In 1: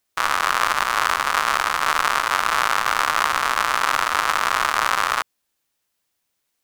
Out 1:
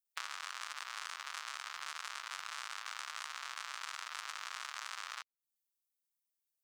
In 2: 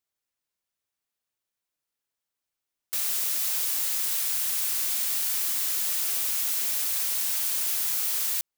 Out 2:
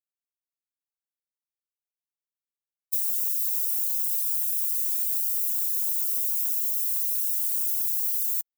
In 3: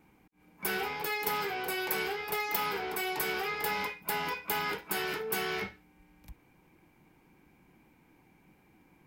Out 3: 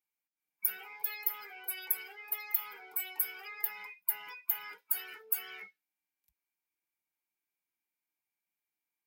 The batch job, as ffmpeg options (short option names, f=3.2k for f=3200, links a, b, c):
-af "afftdn=nr=22:nf=-35,acompressor=threshold=-34dB:ratio=5,aderivative,volume=5.5dB"